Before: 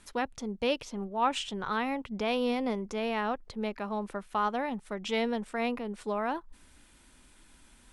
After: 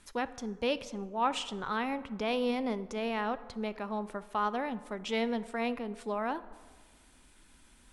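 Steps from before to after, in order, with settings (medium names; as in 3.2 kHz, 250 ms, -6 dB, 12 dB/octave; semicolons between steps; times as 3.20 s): plate-style reverb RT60 1.6 s, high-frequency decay 0.5×, DRR 14.5 dB; trim -2 dB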